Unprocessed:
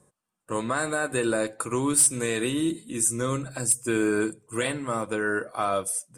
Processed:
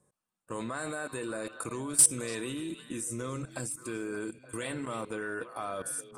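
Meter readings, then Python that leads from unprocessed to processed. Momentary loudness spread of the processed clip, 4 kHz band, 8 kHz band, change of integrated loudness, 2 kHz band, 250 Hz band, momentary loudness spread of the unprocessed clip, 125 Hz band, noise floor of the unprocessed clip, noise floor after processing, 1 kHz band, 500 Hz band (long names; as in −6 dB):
16 LU, −7.0 dB, −4.5 dB, −6.0 dB, −9.5 dB, −9.5 dB, 9 LU, −8.0 dB, −83 dBFS, below −85 dBFS, −9.5 dB, −10.0 dB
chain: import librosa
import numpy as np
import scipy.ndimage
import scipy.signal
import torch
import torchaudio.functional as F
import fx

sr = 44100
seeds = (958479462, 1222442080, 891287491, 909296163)

p1 = fx.level_steps(x, sr, step_db=18)
y = p1 + fx.echo_stepped(p1, sr, ms=290, hz=3400.0, octaves=-1.4, feedback_pct=70, wet_db=-7, dry=0)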